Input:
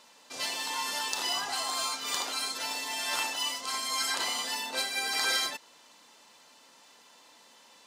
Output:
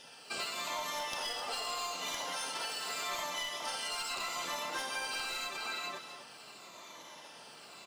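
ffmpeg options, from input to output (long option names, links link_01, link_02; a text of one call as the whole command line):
ffmpeg -i in.wav -filter_complex "[0:a]afftfilt=real='re*pow(10,19/40*sin(2*PI*(1.1*log(max(b,1)*sr/1024/100)/log(2)-(-0.82)*(pts-256)/sr)))':imag='im*pow(10,19/40*sin(2*PI*(1.1*log(max(b,1)*sr/1024/100)/log(2)-(-0.82)*(pts-256)/sr)))':win_size=1024:overlap=0.75,asplit=2[link_01][link_02];[link_02]adelay=414,volume=-7dB,highshelf=frequency=4000:gain=-9.32[link_03];[link_01][link_03]amix=inputs=2:normalize=0,asplit=3[link_04][link_05][link_06];[link_05]asetrate=29433,aresample=44100,atempo=1.49831,volume=-1dB[link_07];[link_06]asetrate=52444,aresample=44100,atempo=0.840896,volume=-17dB[link_08];[link_04][link_07][link_08]amix=inputs=3:normalize=0,equalizer=frequency=1800:width=7.5:gain=-4.5,aeval=exprs='clip(val(0),-1,0.0841)':channel_layout=same,acrusher=bits=7:mode=log:mix=0:aa=0.000001,acompressor=threshold=-34dB:ratio=16,asplit=2[link_09][link_10];[link_10]aecho=0:1:260:0.299[link_11];[link_09][link_11]amix=inputs=2:normalize=0,adynamicequalizer=threshold=0.00141:dfrequency=1200:dqfactor=1.5:tfrequency=1200:tqfactor=1.5:attack=5:release=100:ratio=0.375:range=2:mode=boostabove:tftype=bell,volume=-2dB" out.wav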